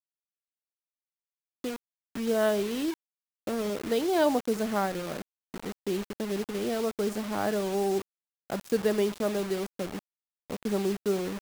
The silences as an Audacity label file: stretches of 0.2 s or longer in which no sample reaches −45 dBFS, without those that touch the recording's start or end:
1.760000	2.150000	silence
2.940000	3.470000	silence
5.220000	5.540000	silence
8.020000	8.500000	silence
9.990000	10.500000	silence